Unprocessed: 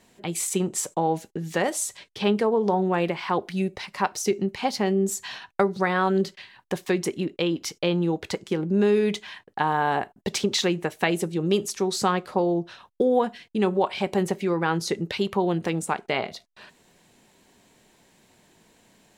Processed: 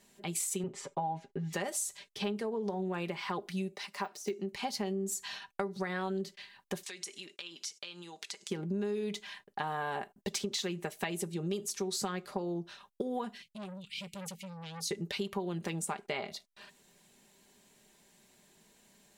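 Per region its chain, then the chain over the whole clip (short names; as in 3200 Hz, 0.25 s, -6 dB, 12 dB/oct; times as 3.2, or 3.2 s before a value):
0.63–1.53 LPF 2600 Hz + comb 7.4 ms, depth 86%
3.72–4.52 de-esser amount 95% + HPF 220 Hz
6.83–8.5 weighting filter ITU-R 468 + compressor 4:1, threshold -37 dBFS
13.42–14.91 Chebyshev band-stop 170–2500 Hz, order 3 + core saturation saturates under 1600 Hz
whole clip: high shelf 4500 Hz +8 dB; comb 5 ms, depth 46%; compressor, threshold -23 dBFS; gain -8.5 dB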